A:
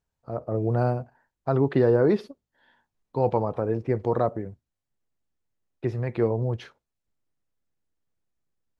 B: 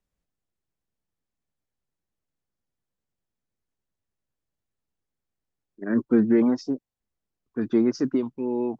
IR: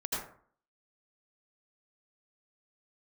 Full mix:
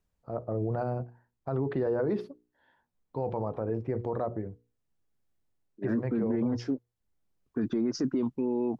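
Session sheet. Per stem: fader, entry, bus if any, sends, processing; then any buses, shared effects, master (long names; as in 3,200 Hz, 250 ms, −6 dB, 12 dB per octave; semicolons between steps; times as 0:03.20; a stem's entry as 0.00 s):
−2.0 dB, 0.00 s, no send, high-shelf EQ 2,200 Hz −9.5 dB; mains-hum notches 60/120/180/240/300/360/420/480 Hz
+1.0 dB, 0.00 s, no send, low-shelf EQ 350 Hz +4.5 dB; automatic ducking −6 dB, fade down 0.45 s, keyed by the first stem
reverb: not used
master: brickwall limiter −21 dBFS, peak gain reduction 13.5 dB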